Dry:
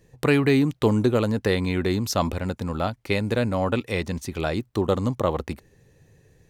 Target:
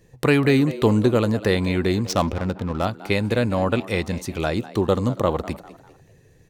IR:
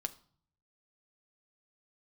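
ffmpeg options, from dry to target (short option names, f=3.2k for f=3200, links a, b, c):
-filter_complex "[0:a]asplit=4[a][b][c][d];[b]adelay=199,afreqshift=100,volume=-17dB[e];[c]adelay=398,afreqshift=200,volume=-25.4dB[f];[d]adelay=597,afreqshift=300,volume=-33.8dB[g];[a][e][f][g]amix=inputs=4:normalize=0,asettb=1/sr,asplit=3[h][i][j];[h]atrim=end=2.064[k];[i]atrim=start=2.06:end=2.85,asetpts=PTS-STARTPTS,afade=t=in:d=0.004:c=qsin,afade=t=out:st=0.786:d=0.004:c=qsin,adynamicsmooth=sensitivity=6:basefreq=910[l];[j]atrim=start=2.846[m];[k][l]acrossfade=d=0.004:c1=hsin:c2=qsin[n];[n][m]acrossfade=d=0.004:c1=qsin:c2=hsin,asplit=2[o][p];[1:a]atrim=start_sample=2205,atrim=end_sample=3087[q];[p][q]afir=irnorm=-1:irlink=0,volume=-9.5dB[r];[o][r]amix=inputs=2:normalize=0"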